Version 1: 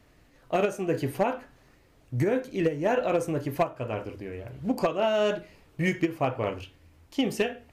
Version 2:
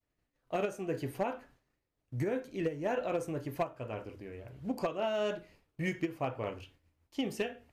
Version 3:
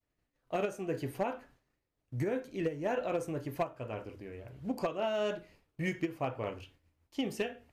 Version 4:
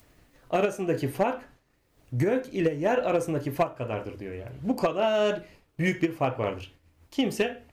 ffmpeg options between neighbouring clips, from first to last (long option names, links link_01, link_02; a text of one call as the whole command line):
ffmpeg -i in.wav -af "agate=range=-33dB:threshold=-48dB:ratio=3:detection=peak,volume=-8dB" out.wav
ffmpeg -i in.wav -af anull out.wav
ffmpeg -i in.wav -af "acompressor=mode=upward:threshold=-53dB:ratio=2.5,volume=8.5dB" out.wav